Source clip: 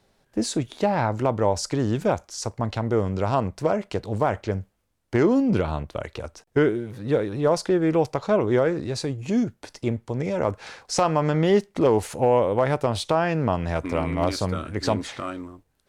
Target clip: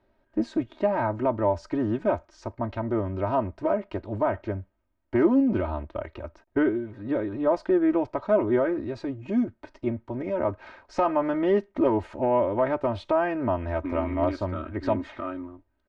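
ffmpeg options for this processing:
ffmpeg -i in.wav -af "lowpass=1900,aecho=1:1:3.2:0.88,volume=-4.5dB" out.wav

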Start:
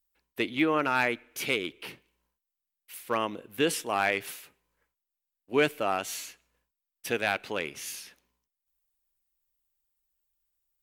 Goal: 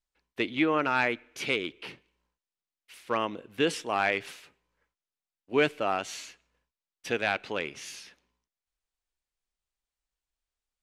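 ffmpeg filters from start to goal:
ffmpeg -i in.wav -af "lowpass=6200" out.wav

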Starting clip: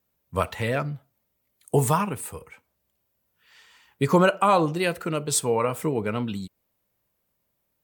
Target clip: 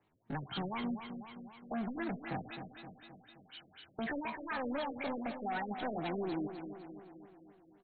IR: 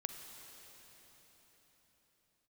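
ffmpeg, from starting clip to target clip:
-filter_complex "[0:a]acrossover=split=130|1000[link_01][link_02][link_03];[link_02]alimiter=limit=-19.5dB:level=0:latency=1:release=30[link_04];[link_01][link_04][link_03]amix=inputs=3:normalize=0,acompressor=threshold=-35dB:ratio=8,asoftclip=type=hard:threshold=-39.5dB,asetrate=72056,aresample=44100,atempo=0.612027,aecho=1:1:262|524|786|1048|1310|1572|1834:0.355|0.209|0.124|0.0729|0.043|0.0254|0.015,afftfilt=real='re*lt(b*sr/1024,630*pow(4500/630,0.5+0.5*sin(2*PI*4*pts/sr)))':imag='im*lt(b*sr/1024,630*pow(4500/630,0.5+0.5*sin(2*PI*4*pts/sr)))':win_size=1024:overlap=0.75,volume=5.5dB"

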